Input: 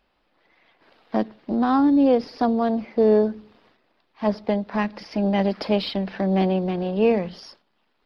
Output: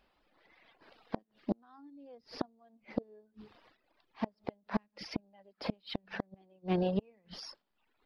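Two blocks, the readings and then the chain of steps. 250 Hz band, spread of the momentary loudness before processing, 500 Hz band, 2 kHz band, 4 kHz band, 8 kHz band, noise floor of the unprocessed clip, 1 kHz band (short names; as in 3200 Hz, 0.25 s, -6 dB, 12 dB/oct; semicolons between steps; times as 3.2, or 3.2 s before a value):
-18.0 dB, 9 LU, -19.5 dB, -13.5 dB, -12.0 dB, n/a, -69 dBFS, -18.5 dB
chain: flipped gate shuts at -16 dBFS, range -31 dB; reverb removal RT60 0.92 s; gain -2.5 dB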